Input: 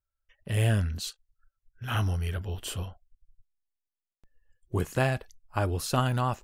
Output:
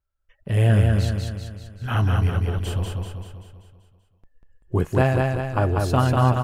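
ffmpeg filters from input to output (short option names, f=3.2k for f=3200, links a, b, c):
-af "highshelf=f=2.4k:g=-12,aecho=1:1:193|386|579|772|965|1158|1351:0.708|0.368|0.191|0.0995|0.0518|0.0269|0.014,volume=7dB"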